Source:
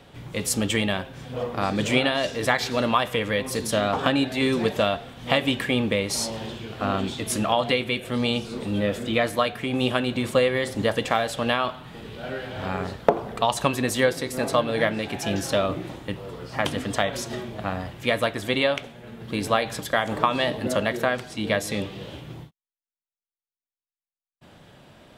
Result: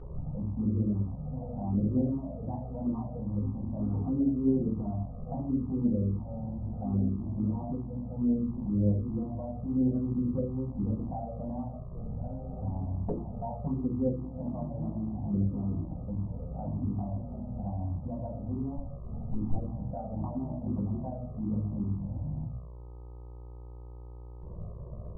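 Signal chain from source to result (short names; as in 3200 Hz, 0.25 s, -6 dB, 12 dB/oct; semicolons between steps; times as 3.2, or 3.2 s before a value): 18.77–19.56 minimum comb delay 0.91 ms; shoebox room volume 32 m³, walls mixed, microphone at 1 m; upward compressor, threshold -14 dBFS; steep low-pass 770 Hz 48 dB/oct; low shelf 240 Hz -2 dB; gate -30 dBFS, range -13 dB; bell 570 Hz -12 dB 1.7 oct; buzz 60 Hz, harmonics 21, -37 dBFS -7 dB/oct; envelope flanger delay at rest 2.8 ms, full sweep at -14 dBFS; gain -6 dB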